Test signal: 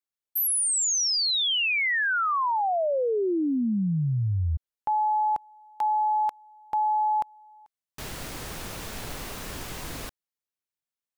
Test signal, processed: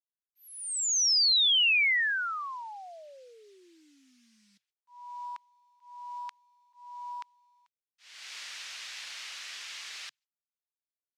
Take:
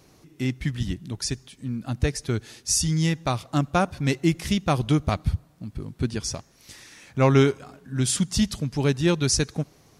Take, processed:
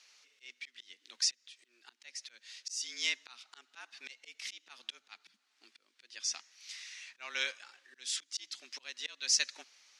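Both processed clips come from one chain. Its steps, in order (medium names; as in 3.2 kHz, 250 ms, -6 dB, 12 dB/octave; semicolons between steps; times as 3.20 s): slow attack 386 ms; frequency shift +120 Hz; companded quantiser 8-bit; Butterworth band-pass 3.5 kHz, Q 0.8; trim +1.5 dB; Opus 128 kbps 48 kHz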